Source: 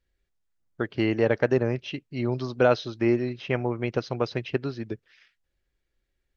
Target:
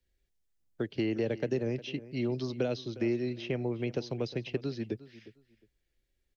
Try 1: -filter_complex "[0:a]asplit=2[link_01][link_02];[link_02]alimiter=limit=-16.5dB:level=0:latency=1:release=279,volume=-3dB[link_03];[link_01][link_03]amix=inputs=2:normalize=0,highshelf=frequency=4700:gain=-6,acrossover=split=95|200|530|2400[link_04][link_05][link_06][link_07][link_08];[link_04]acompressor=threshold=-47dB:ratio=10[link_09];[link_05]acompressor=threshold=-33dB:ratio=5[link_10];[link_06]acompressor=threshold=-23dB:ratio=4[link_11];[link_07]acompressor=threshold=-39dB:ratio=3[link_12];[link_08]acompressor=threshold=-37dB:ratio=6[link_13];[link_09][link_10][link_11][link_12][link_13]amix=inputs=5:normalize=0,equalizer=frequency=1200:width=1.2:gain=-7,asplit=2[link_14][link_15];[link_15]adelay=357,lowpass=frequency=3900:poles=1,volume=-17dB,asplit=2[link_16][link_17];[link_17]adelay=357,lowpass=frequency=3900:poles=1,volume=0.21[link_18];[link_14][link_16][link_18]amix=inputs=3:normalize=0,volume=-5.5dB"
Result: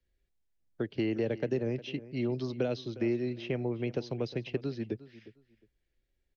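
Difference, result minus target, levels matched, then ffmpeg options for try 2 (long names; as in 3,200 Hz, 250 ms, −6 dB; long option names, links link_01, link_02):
8,000 Hz band −4.0 dB
-filter_complex "[0:a]asplit=2[link_01][link_02];[link_02]alimiter=limit=-16.5dB:level=0:latency=1:release=279,volume=-3dB[link_03];[link_01][link_03]amix=inputs=2:normalize=0,highshelf=frequency=4700:gain=3,acrossover=split=95|200|530|2400[link_04][link_05][link_06][link_07][link_08];[link_04]acompressor=threshold=-47dB:ratio=10[link_09];[link_05]acompressor=threshold=-33dB:ratio=5[link_10];[link_06]acompressor=threshold=-23dB:ratio=4[link_11];[link_07]acompressor=threshold=-39dB:ratio=3[link_12];[link_08]acompressor=threshold=-37dB:ratio=6[link_13];[link_09][link_10][link_11][link_12][link_13]amix=inputs=5:normalize=0,equalizer=frequency=1200:width=1.2:gain=-7,asplit=2[link_14][link_15];[link_15]adelay=357,lowpass=frequency=3900:poles=1,volume=-17dB,asplit=2[link_16][link_17];[link_17]adelay=357,lowpass=frequency=3900:poles=1,volume=0.21[link_18];[link_14][link_16][link_18]amix=inputs=3:normalize=0,volume=-5.5dB"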